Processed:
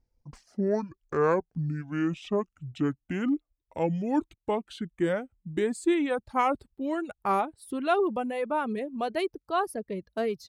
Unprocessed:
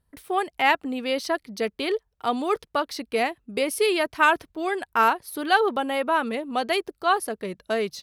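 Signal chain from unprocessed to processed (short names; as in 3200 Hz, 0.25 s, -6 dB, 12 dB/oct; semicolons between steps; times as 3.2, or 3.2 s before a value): speed glide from 50% -> 103%; tilt shelf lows +5.5 dB, about 740 Hz; reverb removal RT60 0.83 s; gain -5 dB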